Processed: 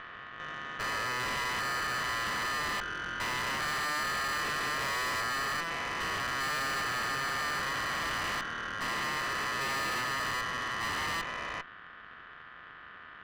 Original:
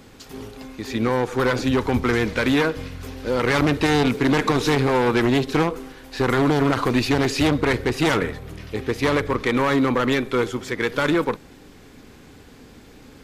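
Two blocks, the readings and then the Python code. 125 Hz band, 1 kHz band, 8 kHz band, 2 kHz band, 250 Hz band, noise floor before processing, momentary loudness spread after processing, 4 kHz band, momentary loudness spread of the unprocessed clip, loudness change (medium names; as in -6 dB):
-21.0 dB, -6.5 dB, -2.5 dB, -4.5 dB, -25.0 dB, -47 dBFS, 14 LU, -5.0 dB, 14 LU, -11.0 dB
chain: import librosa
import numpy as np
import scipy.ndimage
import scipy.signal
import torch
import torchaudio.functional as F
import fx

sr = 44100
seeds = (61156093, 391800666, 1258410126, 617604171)

y = fx.spec_steps(x, sr, hold_ms=400)
y = scipy.signal.sosfilt(scipy.signal.butter(4, 1700.0, 'lowpass', fs=sr, output='sos'), y)
y = y * np.sin(2.0 * np.pi * 1500.0 * np.arange(len(y)) / sr)
y = fx.tube_stage(y, sr, drive_db=37.0, bias=0.8)
y = F.gain(torch.from_numpy(y), 6.0).numpy()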